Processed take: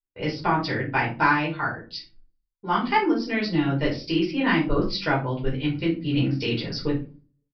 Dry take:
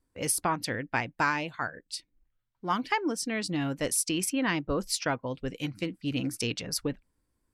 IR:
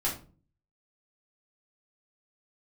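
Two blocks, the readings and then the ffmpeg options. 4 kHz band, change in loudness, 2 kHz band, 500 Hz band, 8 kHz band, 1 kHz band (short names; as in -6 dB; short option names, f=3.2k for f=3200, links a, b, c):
+4.0 dB, +6.0 dB, +6.0 dB, +6.5 dB, under -20 dB, +7.0 dB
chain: -filter_complex "[0:a]agate=range=-33dB:threshold=-57dB:ratio=3:detection=peak[a];[1:a]atrim=start_sample=2205,asetrate=48510,aresample=44100[b];[a][b]afir=irnorm=-1:irlink=0,aresample=11025,aresample=44100"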